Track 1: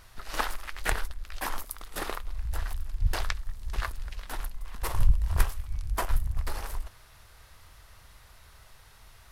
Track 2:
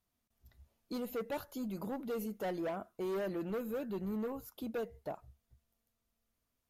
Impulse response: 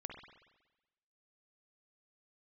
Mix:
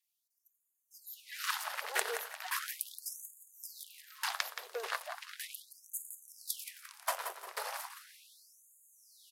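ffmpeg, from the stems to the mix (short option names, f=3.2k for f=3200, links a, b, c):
-filter_complex "[0:a]adelay=1100,volume=0.5dB,asplit=2[a][b];[b]volume=-11dB[c];[1:a]highpass=480,highshelf=f=4.4k:g=6,aphaser=in_gain=1:out_gain=1:delay=3.6:decay=0.44:speed=1.9:type=sinusoidal,volume=-2dB[d];[c]aecho=0:1:174|348|522|696|870:1|0.39|0.152|0.0593|0.0231[e];[a][d][e]amix=inputs=3:normalize=0,acrossover=split=430|3000[f][g][h];[g]acompressor=threshold=-32dB:ratio=6[i];[f][i][h]amix=inputs=3:normalize=0,afftfilt=real='re*gte(b*sr/1024,360*pow(6600/360,0.5+0.5*sin(2*PI*0.37*pts/sr)))':imag='im*gte(b*sr/1024,360*pow(6600/360,0.5+0.5*sin(2*PI*0.37*pts/sr)))':win_size=1024:overlap=0.75"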